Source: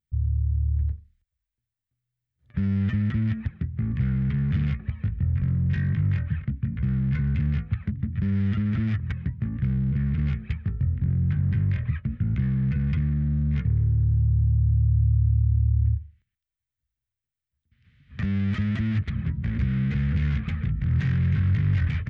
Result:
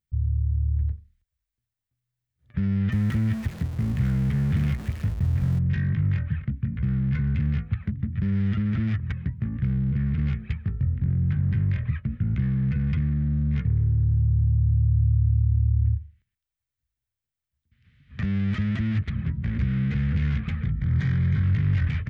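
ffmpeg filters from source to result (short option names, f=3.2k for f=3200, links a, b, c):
-filter_complex "[0:a]asettb=1/sr,asplit=3[a][b][c];[a]atrim=end=2.924[d];[b]atrim=start=2.92:end=5.59,asetpts=PTS-STARTPTS,afade=t=in:d=0.004:c=qsin,afade=t=out:st=2.666:d=0.004:c=qsin,aeval=exprs='val(0)+0.5*0.0178*sgn(val(0))':c=same[e];[c]atrim=start=5.586[f];[d][e]acrossfade=d=0.004:c1=hsin:c2=qsin[g];[g][f]acrossfade=d=0.004:c1=qsin:c2=hsin,asettb=1/sr,asplit=3[h][i][j];[h]atrim=end=20.644[k];[i]atrim=start=20.64:end=21.44,asetpts=PTS-STARTPTS,afade=t=in:d=0.004:c=qsin,afade=t=out:st=0.796:d=0.004:c=qsin,asuperstop=centerf=2700:order=4:qfactor=6.9[l];[j]atrim=start=21.436[m];[k][l]acrossfade=d=0.004:c1=hsin:c2=qsin[n];[n][m]acrossfade=d=0.004:c1=qsin:c2=hsin"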